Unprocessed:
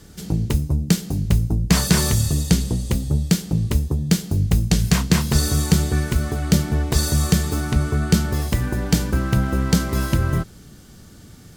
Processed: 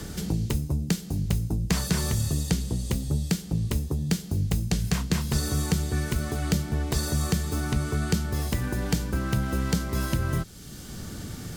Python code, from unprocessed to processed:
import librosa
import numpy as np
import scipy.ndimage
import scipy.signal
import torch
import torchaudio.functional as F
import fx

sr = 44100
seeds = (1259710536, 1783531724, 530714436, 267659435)

y = fx.band_squash(x, sr, depth_pct=70)
y = y * 10.0 ** (-7.5 / 20.0)